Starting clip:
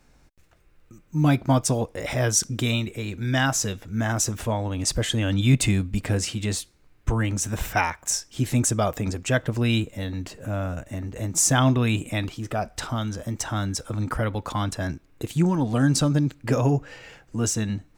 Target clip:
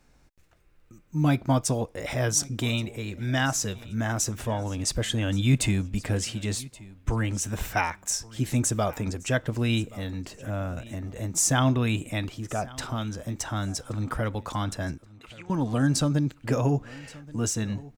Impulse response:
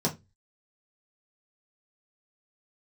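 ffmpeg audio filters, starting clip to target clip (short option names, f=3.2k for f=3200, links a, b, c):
-filter_complex "[0:a]asettb=1/sr,asplit=3[a][b][c];[a]atrim=end=15.074[d];[b]atrim=start=15.07:end=15.5,asetpts=PTS-STARTPTS,afade=t=in:d=0.004:c=qsin,afade=t=out:st=0.426:d=0.004:c=qsin,bandpass=f=2.4k:t=q:w=1.9:csg=0[e];[c]atrim=start=15.496[f];[d][e]acrossfade=d=0.004:c1=hsin:c2=qsin[g];[g][f]acrossfade=d=0.004:c1=qsin:c2=hsin,aecho=1:1:1126|2252:0.0891|0.0205,volume=-3dB"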